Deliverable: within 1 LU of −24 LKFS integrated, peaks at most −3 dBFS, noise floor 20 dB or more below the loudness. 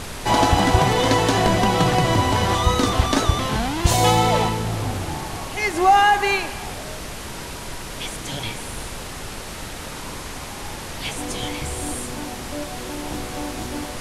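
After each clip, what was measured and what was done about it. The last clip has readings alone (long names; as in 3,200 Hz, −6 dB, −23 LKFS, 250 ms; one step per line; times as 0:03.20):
background noise floor −33 dBFS; target noise floor −41 dBFS; integrated loudness −21.0 LKFS; sample peak −2.0 dBFS; target loudness −24.0 LKFS
→ noise reduction from a noise print 8 dB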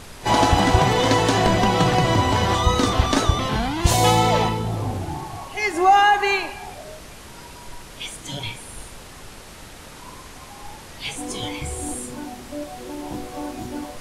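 background noise floor −41 dBFS; integrated loudness −20.0 LKFS; sample peak −2.5 dBFS; target loudness −24.0 LKFS
→ level −4 dB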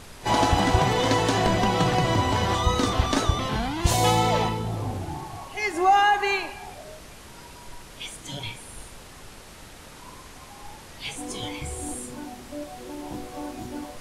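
integrated loudness −24.0 LKFS; sample peak −6.5 dBFS; background noise floor −45 dBFS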